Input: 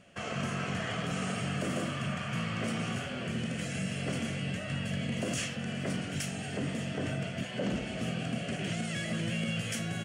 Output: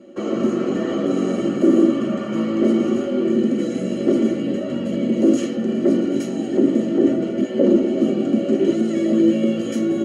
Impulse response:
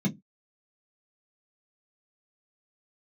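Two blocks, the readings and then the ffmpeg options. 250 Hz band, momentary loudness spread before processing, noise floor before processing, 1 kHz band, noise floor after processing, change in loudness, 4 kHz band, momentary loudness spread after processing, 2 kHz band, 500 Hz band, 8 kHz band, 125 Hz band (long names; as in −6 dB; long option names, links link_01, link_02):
+18.5 dB, 2 LU, −39 dBFS, +5.0 dB, −26 dBFS, +15.0 dB, +0.5 dB, 6 LU, −1.5 dB, +19.5 dB, can't be measured, +2.5 dB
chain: -filter_complex "[1:a]atrim=start_sample=2205,asetrate=79380,aresample=44100[link_01];[0:a][link_01]afir=irnorm=-1:irlink=0,volume=3dB"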